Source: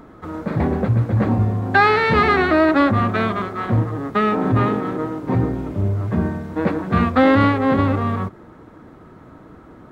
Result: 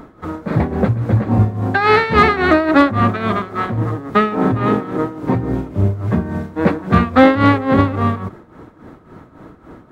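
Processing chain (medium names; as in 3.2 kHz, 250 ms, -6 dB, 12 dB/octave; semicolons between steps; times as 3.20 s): tremolo 3.6 Hz, depth 73%; hard clipper -7 dBFS, distortion -33 dB; trim +6 dB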